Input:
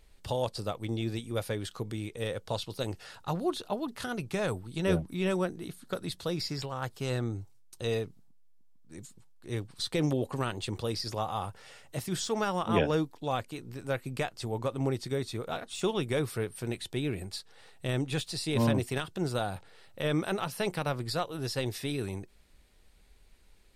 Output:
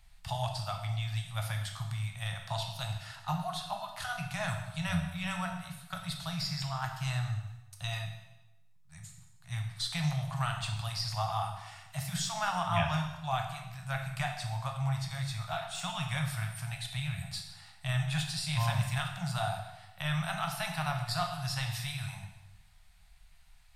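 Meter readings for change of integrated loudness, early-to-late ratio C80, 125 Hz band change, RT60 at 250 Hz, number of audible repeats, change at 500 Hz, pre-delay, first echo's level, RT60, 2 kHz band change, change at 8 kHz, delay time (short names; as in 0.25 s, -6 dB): -1.5 dB, 8.0 dB, +1.5 dB, 0.95 s, none, -11.0 dB, 6 ms, none, 1.0 s, +1.5 dB, +1.0 dB, none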